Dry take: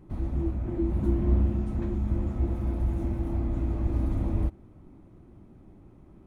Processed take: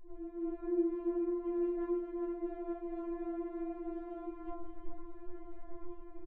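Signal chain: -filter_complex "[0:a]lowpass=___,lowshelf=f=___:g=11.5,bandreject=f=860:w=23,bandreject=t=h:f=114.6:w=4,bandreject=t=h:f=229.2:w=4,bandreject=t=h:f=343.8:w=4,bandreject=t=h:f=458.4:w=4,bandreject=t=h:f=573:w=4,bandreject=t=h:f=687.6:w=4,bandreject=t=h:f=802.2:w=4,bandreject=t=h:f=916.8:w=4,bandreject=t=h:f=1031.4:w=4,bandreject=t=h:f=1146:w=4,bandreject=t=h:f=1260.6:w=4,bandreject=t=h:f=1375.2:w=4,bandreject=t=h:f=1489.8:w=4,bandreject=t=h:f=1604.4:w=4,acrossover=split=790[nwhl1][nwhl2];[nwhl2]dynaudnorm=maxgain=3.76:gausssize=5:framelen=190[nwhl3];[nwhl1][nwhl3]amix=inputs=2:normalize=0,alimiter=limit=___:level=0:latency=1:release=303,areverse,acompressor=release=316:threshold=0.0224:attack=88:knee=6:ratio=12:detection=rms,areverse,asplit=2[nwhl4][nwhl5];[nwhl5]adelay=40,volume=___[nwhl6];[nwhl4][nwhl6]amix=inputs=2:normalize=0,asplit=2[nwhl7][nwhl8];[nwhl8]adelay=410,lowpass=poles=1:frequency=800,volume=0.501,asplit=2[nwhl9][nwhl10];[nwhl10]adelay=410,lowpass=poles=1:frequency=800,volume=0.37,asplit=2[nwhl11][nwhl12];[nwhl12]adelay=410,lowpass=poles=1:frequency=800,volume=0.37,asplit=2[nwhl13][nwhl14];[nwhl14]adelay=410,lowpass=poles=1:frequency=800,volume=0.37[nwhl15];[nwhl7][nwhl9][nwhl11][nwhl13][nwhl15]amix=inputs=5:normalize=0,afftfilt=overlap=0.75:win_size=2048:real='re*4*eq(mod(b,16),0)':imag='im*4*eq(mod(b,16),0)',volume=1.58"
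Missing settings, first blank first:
1300, 64, 0.299, 0.473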